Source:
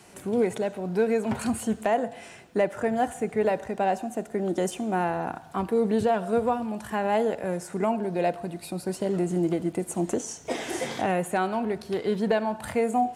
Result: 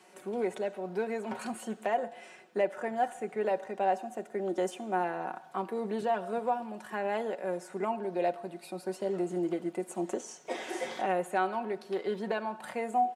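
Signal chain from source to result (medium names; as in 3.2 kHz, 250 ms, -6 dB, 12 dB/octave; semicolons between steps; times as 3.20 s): high-pass 330 Hz 12 dB/octave; treble shelf 4.9 kHz -8 dB; comb 5.4 ms, depth 48%; trim -5 dB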